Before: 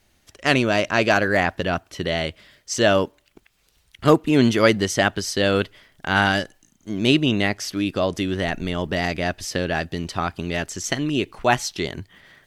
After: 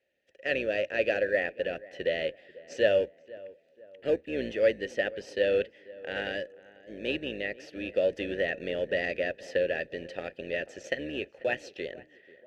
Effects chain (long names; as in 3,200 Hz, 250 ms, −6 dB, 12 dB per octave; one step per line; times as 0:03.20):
sub-octave generator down 2 octaves, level 0 dB
dynamic equaliser 820 Hz, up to −4 dB, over −28 dBFS, Q 0.8
automatic gain control
in parallel at −11.5 dB: sample-rate reduction 2,000 Hz, jitter 0%
on the sum: formant filter e
on a send: tape delay 490 ms, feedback 46%, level −19 dB, low-pass 1,400 Hz
on the sum: level −2.5 dB